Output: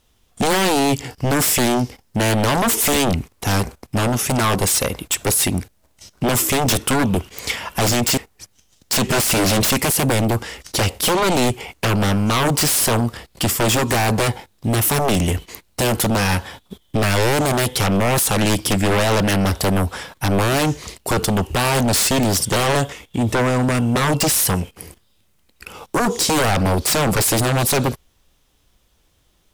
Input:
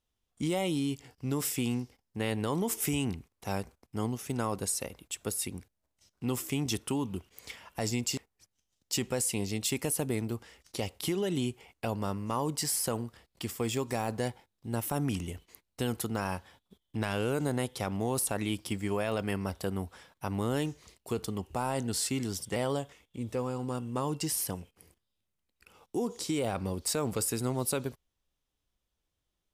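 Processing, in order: 9.09–9.71 s: power-law waveshaper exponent 0.7; sine folder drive 13 dB, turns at -19 dBFS; trim +5.5 dB

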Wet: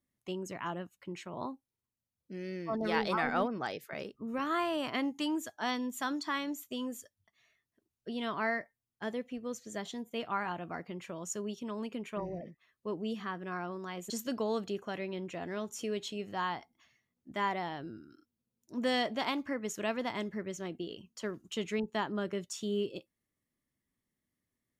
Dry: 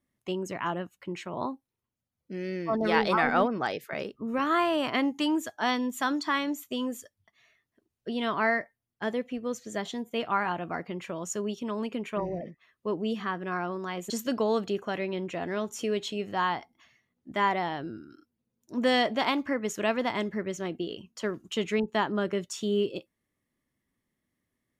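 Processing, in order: tone controls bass +2 dB, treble +4 dB; trim -7 dB

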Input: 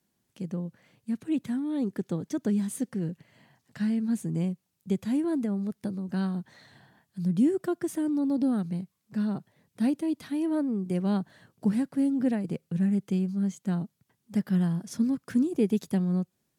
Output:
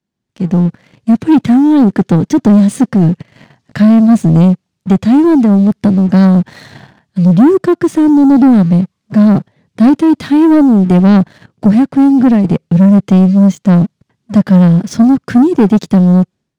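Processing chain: low-pass 5.6 kHz 12 dB/octave; bass shelf 330 Hz +4.5 dB; level rider gain up to 16 dB; waveshaping leveller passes 2

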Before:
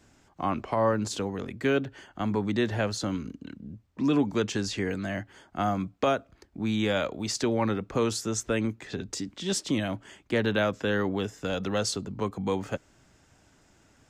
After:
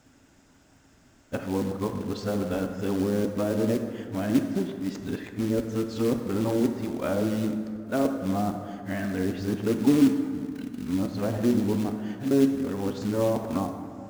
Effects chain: reverse the whole clip; peaking EQ 260 Hz +7 dB 0.37 oct; low-pass that closes with the level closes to 630 Hz, closed at -22 dBFS; short-mantissa float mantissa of 2-bit; plate-style reverb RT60 2.3 s, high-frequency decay 0.45×, DRR 5 dB

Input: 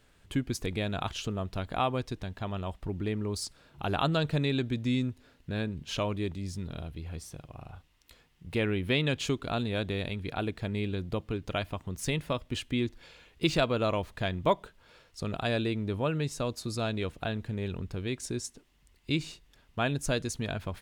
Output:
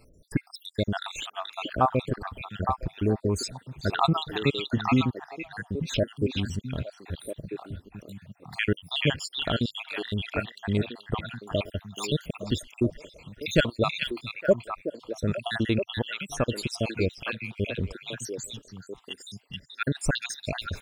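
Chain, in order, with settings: random holes in the spectrogram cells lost 74%; on a send: repeats whose band climbs or falls 431 ms, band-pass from 2.8 kHz, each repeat -1.4 oct, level -0.5 dB; on the sum: trim +8 dB

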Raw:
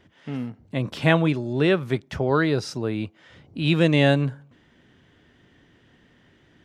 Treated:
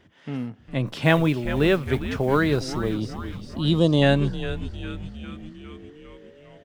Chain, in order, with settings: 0.86–2.94 s: modulation noise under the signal 32 dB; 2.84–4.02 s: time-frequency box 1.3–2.8 kHz -19 dB; frequency-shifting echo 405 ms, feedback 62%, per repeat -120 Hz, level -11 dB

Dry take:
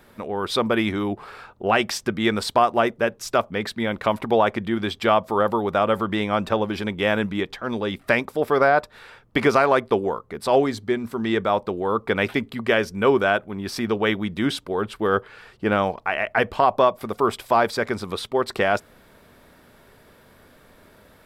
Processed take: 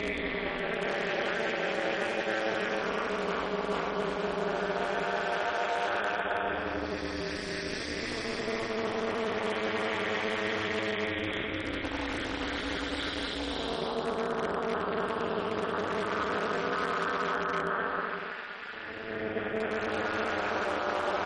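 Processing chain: comb 7 ms, depth 60%; Paulstretch 6.3×, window 0.50 s, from 12.46 s; in parallel at -5 dB: integer overflow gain 18 dB; on the sum: peaking EQ 120 Hz -10.5 dB 1.7 oct; reverse; compression 16:1, threshold -27 dBFS, peak gain reduction 15.5 dB; reverse; three-band isolator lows -18 dB, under 280 Hz, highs -12 dB, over 3.6 kHz; AM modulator 220 Hz, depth 100%; trim +5 dB; MP3 40 kbps 44.1 kHz

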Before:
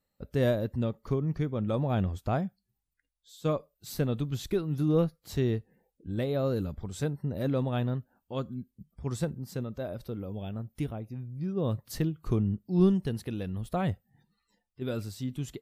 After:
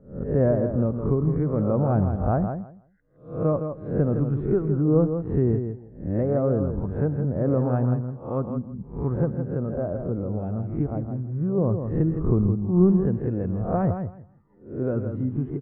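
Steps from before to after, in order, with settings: reverse spectral sustain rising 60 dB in 0.42 s; Bessel low-pass 940 Hz, order 6; in parallel at +1.5 dB: compression, threshold -39 dBFS, peak gain reduction 19.5 dB; on the sum: feedback delay 163 ms, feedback 17%, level -7.5 dB; trim +4 dB

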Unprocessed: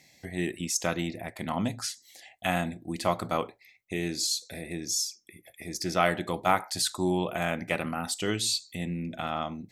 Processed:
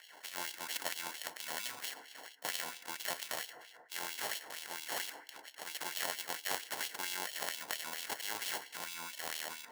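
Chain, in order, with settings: treble shelf 11 kHz +8.5 dB; sample-and-hold 36×; FDN reverb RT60 1.6 s, low-frequency decay 1.1×, high-frequency decay 0.3×, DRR 16.5 dB; LFO high-pass sine 4.4 Hz 830–3200 Hz; spectrum-flattening compressor 2:1; trim -6 dB

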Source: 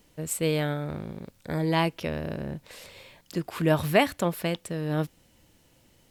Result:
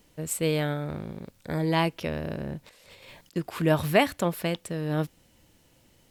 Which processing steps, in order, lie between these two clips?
2.67–3.36 s: compressor with a negative ratio -51 dBFS, ratio -0.5

